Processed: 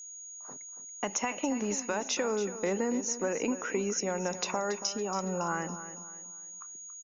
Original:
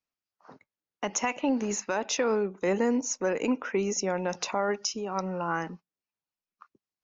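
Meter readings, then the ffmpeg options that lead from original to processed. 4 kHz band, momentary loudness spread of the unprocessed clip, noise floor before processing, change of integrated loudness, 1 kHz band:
−1.5 dB, 6 LU, below −85 dBFS, −4.0 dB, −3.0 dB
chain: -af "acompressor=threshold=-27dB:ratio=6,aecho=1:1:280|560|840|1120:0.237|0.0854|0.0307|0.0111,aeval=exprs='val(0)+0.00708*sin(2*PI*6700*n/s)':channel_layout=same"

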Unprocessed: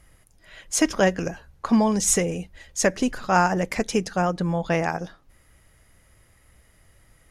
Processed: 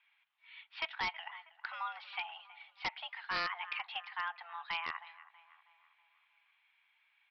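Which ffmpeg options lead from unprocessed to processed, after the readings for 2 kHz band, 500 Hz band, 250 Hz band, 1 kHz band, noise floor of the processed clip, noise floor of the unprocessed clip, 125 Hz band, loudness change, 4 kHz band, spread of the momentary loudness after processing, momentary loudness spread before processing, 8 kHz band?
−9.5 dB, −31.0 dB, −38.5 dB, −14.5 dB, −74 dBFS, −59 dBFS, −36.0 dB, −16.5 dB, −7.0 dB, 18 LU, 13 LU, below −40 dB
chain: -filter_complex "[0:a]aderivative,highpass=frequency=400:width_type=q:width=0.5412,highpass=frequency=400:width_type=q:width=1.307,lowpass=frequency=2900:width_type=q:width=0.5176,lowpass=frequency=2900:width_type=q:width=0.7071,lowpass=frequency=2900:width_type=q:width=1.932,afreqshift=340,asplit=2[link_01][link_02];[link_02]adelay=321,lowpass=frequency=2400:poles=1,volume=-17dB,asplit=2[link_03][link_04];[link_04]adelay=321,lowpass=frequency=2400:poles=1,volume=0.55,asplit=2[link_05][link_06];[link_06]adelay=321,lowpass=frequency=2400:poles=1,volume=0.55,asplit=2[link_07][link_08];[link_08]adelay=321,lowpass=frequency=2400:poles=1,volume=0.55,asplit=2[link_09][link_10];[link_10]adelay=321,lowpass=frequency=2400:poles=1,volume=0.55[link_11];[link_01][link_03][link_05][link_07][link_09][link_11]amix=inputs=6:normalize=0,aresample=11025,aeval=exprs='0.0237*(abs(mod(val(0)/0.0237+3,4)-2)-1)':channel_layout=same,aresample=44100,volume=4.5dB"

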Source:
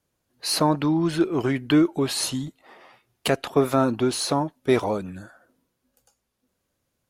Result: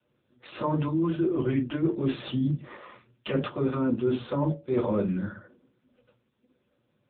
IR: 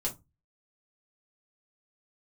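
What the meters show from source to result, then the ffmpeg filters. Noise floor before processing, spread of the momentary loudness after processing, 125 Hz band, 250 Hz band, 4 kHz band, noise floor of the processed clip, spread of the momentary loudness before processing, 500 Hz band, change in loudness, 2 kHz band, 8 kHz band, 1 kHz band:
−78 dBFS, 9 LU, −0.5 dB, −4.0 dB, −14.5 dB, −74 dBFS, 11 LU, −5.0 dB, −5.0 dB, −9.0 dB, below −40 dB, −8.5 dB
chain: -filter_complex "[0:a]asuperstop=centerf=740:order=8:qfactor=3,bandreject=frequency=113.7:width_type=h:width=4,bandreject=frequency=227.4:width_type=h:width=4,bandreject=frequency=341.1:width_type=h:width=4,bandreject=frequency=454.8:width_type=h:width=4,bandreject=frequency=568.5:width_type=h:width=4,asplit=2[link_01][link_02];[link_02]alimiter=limit=-16.5dB:level=0:latency=1:release=27,volume=-1dB[link_03];[link_01][link_03]amix=inputs=2:normalize=0[link_04];[1:a]atrim=start_sample=2205,asetrate=52920,aresample=44100[link_05];[link_04][link_05]afir=irnorm=-1:irlink=0,aeval=exprs='1*(cos(1*acos(clip(val(0)/1,-1,1)))-cos(1*PI/2))+0.0112*(cos(4*acos(clip(val(0)/1,-1,1)))-cos(4*PI/2))+0.00631*(cos(6*acos(clip(val(0)/1,-1,1)))-cos(6*PI/2))':channel_layout=same,areverse,acompressor=threshold=-22dB:ratio=12,areverse" -ar 8000 -c:a libopencore_amrnb -b:a 6700

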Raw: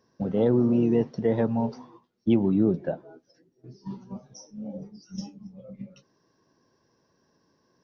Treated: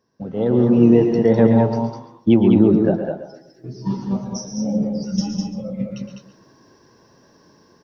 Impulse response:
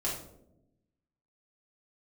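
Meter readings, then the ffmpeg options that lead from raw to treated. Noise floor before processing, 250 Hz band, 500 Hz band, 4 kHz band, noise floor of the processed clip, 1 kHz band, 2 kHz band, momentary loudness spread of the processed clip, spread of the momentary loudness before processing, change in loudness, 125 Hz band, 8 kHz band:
−70 dBFS, +9.5 dB, +9.0 dB, +12.5 dB, −54 dBFS, +9.5 dB, +9.5 dB, 16 LU, 21 LU, +7.0 dB, +10.0 dB, can't be measured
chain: -filter_complex "[0:a]asplit=2[link_01][link_02];[link_02]adelay=123,lowpass=frequency=2000:poles=1,volume=-12.5dB,asplit=2[link_03][link_04];[link_04]adelay=123,lowpass=frequency=2000:poles=1,volume=0.33,asplit=2[link_05][link_06];[link_06]adelay=123,lowpass=frequency=2000:poles=1,volume=0.33[link_07];[link_03][link_05][link_07]amix=inputs=3:normalize=0[link_08];[link_01][link_08]amix=inputs=2:normalize=0,dynaudnorm=framelen=160:gausssize=7:maxgain=16dB,asplit=2[link_09][link_10];[link_10]aecho=0:1:114|137|203|341:0.251|0.299|0.596|0.106[link_11];[link_09][link_11]amix=inputs=2:normalize=0,volume=-2.5dB"

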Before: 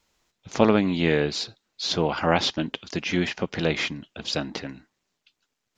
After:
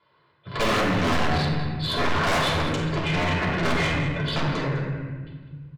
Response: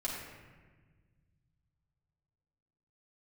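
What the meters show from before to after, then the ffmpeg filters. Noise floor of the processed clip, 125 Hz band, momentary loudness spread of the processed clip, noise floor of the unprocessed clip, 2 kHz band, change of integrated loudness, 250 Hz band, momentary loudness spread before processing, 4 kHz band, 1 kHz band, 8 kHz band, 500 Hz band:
−63 dBFS, +6.0 dB, 10 LU, −81 dBFS, +4.5 dB, +1.0 dB, −1.0 dB, 13 LU, 0.0 dB, +4.5 dB, −0.5 dB, −2.0 dB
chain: -filter_complex "[0:a]lowshelf=frequency=360:gain=7.5,aecho=1:1:2:0.42,acontrast=23,aresample=11025,acrusher=bits=6:mode=log:mix=0:aa=0.000001,aresample=44100,highpass=frequency=110:width=0.5412,highpass=frequency=110:width=1.3066,equalizer=frequency=150:width_type=q:width=4:gain=5,equalizer=frequency=210:width_type=q:width=4:gain=-9,equalizer=frequency=1100:width_type=q:width=4:gain=9,equalizer=frequency=1700:width_type=q:width=4:gain=4,equalizer=frequency=2500:width_type=q:width=4:gain=-5,lowpass=frequency=3700:width=0.5412,lowpass=frequency=3700:width=1.3066,aeval=exprs='1.12*(cos(1*acos(clip(val(0)/1.12,-1,1)))-cos(1*PI/2))+0.355*(cos(7*acos(clip(val(0)/1.12,-1,1)))-cos(7*PI/2))':channel_layout=same,volume=10dB,asoftclip=hard,volume=-10dB,aecho=1:1:200:0.211[link_01];[1:a]atrim=start_sample=2205,asetrate=43659,aresample=44100[link_02];[link_01][link_02]afir=irnorm=-1:irlink=0,asoftclip=type=tanh:threshold=-15.5dB,volume=-2.5dB"

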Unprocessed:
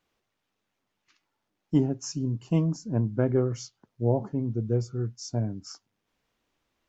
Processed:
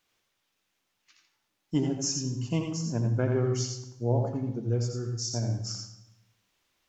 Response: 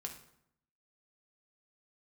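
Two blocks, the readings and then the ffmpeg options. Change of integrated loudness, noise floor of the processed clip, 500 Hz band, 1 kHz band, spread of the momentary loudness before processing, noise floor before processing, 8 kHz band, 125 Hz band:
−1.5 dB, −78 dBFS, −2.0 dB, 0.0 dB, 12 LU, −81 dBFS, can't be measured, −0.5 dB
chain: -filter_complex "[0:a]lowpass=frequency=3100:poles=1,crystalizer=i=8.5:c=0,asplit=2[link_01][link_02];[1:a]atrim=start_sample=2205,asetrate=32634,aresample=44100,adelay=84[link_03];[link_02][link_03]afir=irnorm=-1:irlink=0,volume=-2.5dB[link_04];[link_01][link_04]amix=inputs=2:normalize=0,volume=-5dB"

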